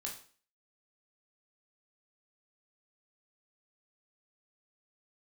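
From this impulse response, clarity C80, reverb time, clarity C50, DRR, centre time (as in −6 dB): 12.5 dB, 0.45 s, 7.5 dB, −1.0 dB, 23 ms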